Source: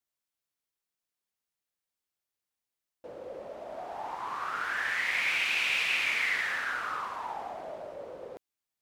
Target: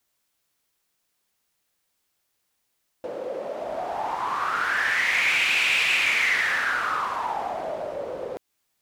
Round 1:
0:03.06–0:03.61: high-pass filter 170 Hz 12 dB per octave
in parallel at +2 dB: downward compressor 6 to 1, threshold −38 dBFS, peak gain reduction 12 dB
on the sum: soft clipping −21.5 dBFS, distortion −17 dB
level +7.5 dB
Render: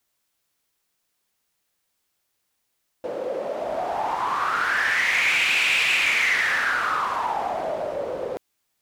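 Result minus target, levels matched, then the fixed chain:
downward compressor: peak gain reduction −9.5 dB
0:03.06–0:03.61: high-pass filter 170 Hz 12 dB per octave
in parallel at +2 dB: downward compressor 6 to 1, threshold −49.5 dBFS, peak gain reduction 22 dB
on the sum: soft clipping −21.5 dBFS, distortion −19 dB
level +7.5 dB

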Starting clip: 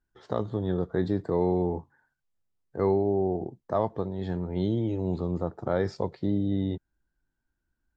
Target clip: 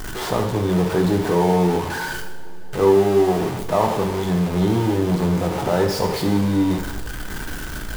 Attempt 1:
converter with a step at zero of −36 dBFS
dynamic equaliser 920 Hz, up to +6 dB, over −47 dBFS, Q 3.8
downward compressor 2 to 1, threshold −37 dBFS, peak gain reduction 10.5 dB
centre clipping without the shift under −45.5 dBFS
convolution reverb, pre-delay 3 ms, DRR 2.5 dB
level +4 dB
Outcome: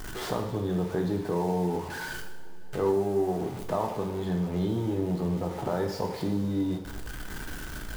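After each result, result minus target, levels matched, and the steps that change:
downward compressor: peak gain reduction +10.5 dB; converter with a step at zero: distortion −7 dB
remove: downward compressor 2 to 1, threshold −37 dBFS, peak gain reduction 10.5 dB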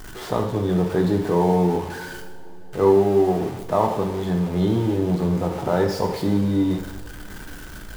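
converter with a step at zero: distortion −7 dB
change: converter with a step at zero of −28 dBFS

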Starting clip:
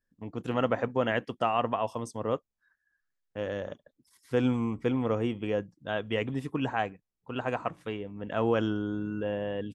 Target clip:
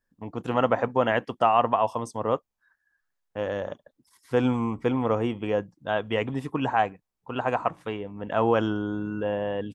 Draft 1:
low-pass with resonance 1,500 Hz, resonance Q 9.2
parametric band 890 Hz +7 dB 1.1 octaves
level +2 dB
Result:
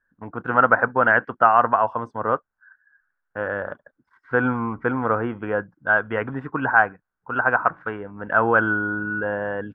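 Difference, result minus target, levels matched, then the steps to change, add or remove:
2,000 Hz band +9.0 dB
remove: low-pass with resonance 1,500 Hz, resonance Q 9.2

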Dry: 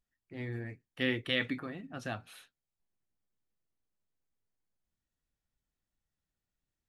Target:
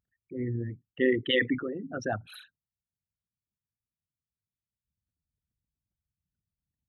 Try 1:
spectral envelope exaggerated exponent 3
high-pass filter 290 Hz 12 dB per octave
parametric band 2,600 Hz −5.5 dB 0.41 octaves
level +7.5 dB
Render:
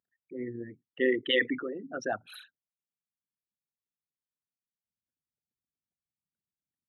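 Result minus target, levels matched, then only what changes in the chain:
125 Hz band −13.5 dB
change: high-pass filter 81 Hz 12 dB per octave

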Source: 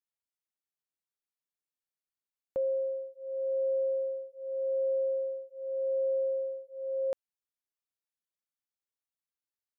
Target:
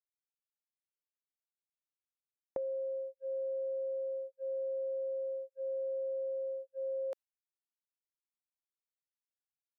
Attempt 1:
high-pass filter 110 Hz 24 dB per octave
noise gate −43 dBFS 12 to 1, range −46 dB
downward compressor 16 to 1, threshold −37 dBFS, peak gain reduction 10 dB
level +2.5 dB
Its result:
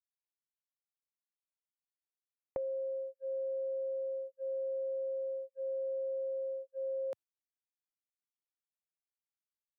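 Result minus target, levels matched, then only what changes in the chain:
125 Hz band +4.0 dB
change: high-pass filter 400 Hz 24 dB per octave

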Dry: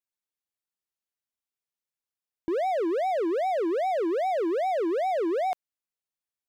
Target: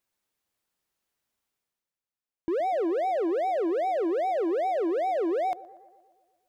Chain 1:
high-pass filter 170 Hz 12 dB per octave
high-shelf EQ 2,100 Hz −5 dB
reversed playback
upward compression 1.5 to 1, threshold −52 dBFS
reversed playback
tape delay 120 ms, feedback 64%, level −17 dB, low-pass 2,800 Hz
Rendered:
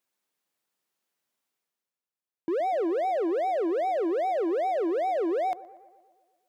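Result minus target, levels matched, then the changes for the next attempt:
125 Hz band −5.0 dB
remove: high-pass filter 170 Hz 12 dB per octave

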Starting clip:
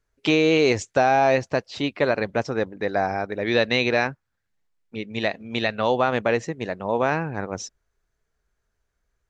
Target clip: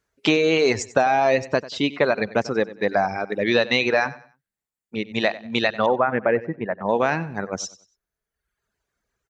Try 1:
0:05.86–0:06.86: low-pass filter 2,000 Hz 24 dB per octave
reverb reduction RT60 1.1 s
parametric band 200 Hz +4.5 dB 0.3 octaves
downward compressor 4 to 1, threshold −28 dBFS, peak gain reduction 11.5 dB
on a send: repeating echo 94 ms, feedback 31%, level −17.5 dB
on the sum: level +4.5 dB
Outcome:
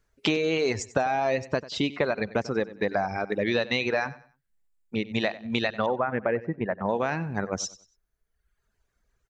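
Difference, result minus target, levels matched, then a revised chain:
downward compressor: peak gain reduction +7 dB; 125 Hz band +4.0 dB
0:05.86–0:06.86: low-pass filter 2,000 Hz 24 dB per octave
reverb reduction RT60 1.1 s
high-pass filter 150 Hz 6 dB per octave
parametric band 200 Hz +4.5 dB 0.3 octaves
downward compressor 4 to 1, threshold −18.5 dBFS, peak gain reduction 4.5 dB
on a send: repeating echo 94 ms, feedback 31%, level −17.5 dB
on the sum: level +4.5 dB

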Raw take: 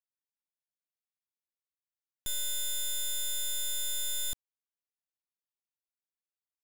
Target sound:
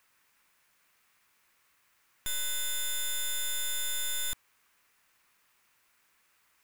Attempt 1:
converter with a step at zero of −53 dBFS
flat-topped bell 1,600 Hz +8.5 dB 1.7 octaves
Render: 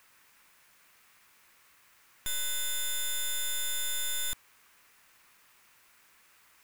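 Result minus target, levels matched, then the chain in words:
converter with a step at zero: distortion +7 dB
converter with a step at zero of −60.5 dBFS
flat-topped bell 1,600 Hz +8.5 dB 1.7 octaves

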